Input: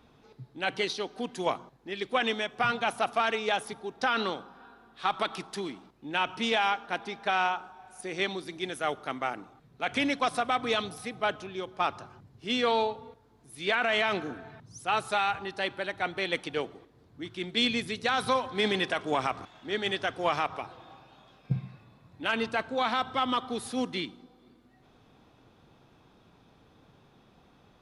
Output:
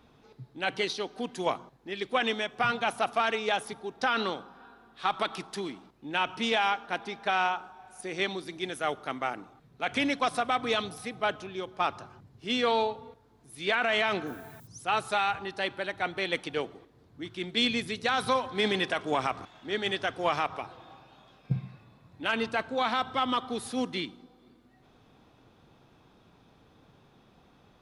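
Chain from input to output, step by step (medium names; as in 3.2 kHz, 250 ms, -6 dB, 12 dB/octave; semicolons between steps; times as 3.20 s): 14.26–14.66 s: added noise violet -57 dBFS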